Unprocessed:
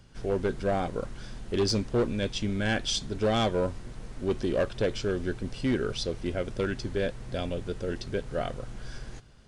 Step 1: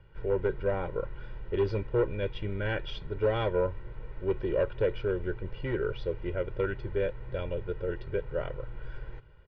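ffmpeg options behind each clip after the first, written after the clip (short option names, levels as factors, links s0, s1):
-af "lowpass=f=2600:w=0.5412,lowpass=f=2600:w=1.3066,aecho=1:1:2.1:0.84,volume=0.631"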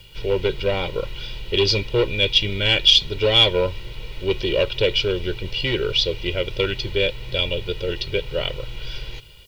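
-af "aexciter=amount=9.9:drive=9.1:freq=2600,volume=2.24"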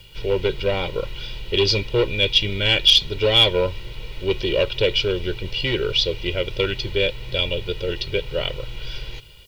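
-af "asoftclip=type=hard:threshold=0.562"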